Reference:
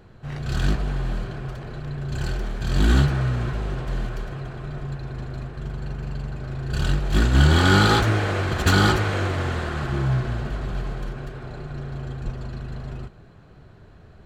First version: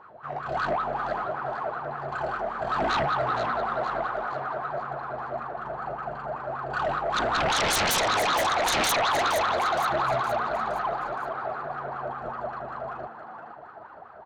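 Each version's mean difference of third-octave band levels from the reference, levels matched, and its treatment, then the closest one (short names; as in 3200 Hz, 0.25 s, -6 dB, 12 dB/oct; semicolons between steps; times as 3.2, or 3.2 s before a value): 8.0 dB: wah 5.2 Hz 620–1300 Hz, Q 11; sine folder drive 20 dB, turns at -19 dBFS; frequency-shifting echo 0.467 s, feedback 45%, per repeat +94 Hz, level -9 dB; gain -2.5 dB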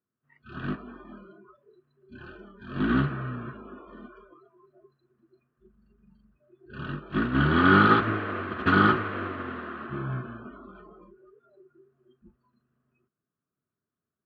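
14.5 dB: spectral noise reduction 28 dB; speaker cabinet 170–2700 Hz, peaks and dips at 250 Hz +6 dB, 530 Hz -5 dB, 800 Hz -10 dB, 1200 Hz +7 dB, 2200 Hz -5 dB; upward expander 1.5:1, over -34 dBFS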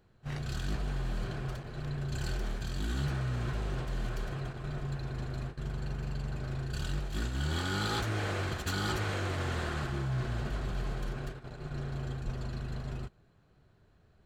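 5.0 dB: gate -33 dBFS, range -12 dB; high shelf 3700 Hz +6.5 dB; reverse; compressor 8:1, threshold -25 dBFS, peak gain reduction 14.5 dB; reverse; gain -4.5 dB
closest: third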